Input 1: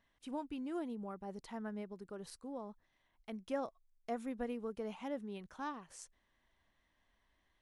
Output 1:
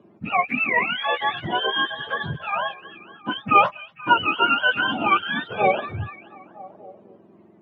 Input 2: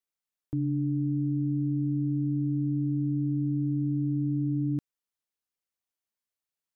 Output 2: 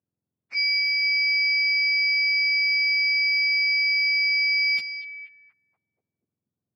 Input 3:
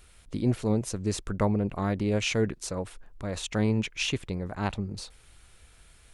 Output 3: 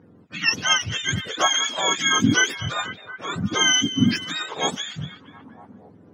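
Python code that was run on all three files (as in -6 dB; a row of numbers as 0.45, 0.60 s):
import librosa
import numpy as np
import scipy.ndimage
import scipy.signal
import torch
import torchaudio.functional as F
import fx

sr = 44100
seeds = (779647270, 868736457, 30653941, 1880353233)

y = fx.octave_mirror(x, sr, pivot_hz=820.0)
y = scipy.signal.sosfilt(scipy.signal.butter(2, 200.0, 'highpass', fs=sr, output='sos'), y)
y = fx.echo_stepped(y, sr, ms=240, hz=3700.0, octaves=-0.7, feedback_pct=70, wet_db=-9.5)
y = fx.env_lowpass(y, sr, base_hz=1600.0, full_db=-26.0)
y = y * 10.0 ** (-24 / 20.0) / np.sqrt(np.mean(np.square(y)))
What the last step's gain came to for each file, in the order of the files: +26.0, +5.5, +9.5 dB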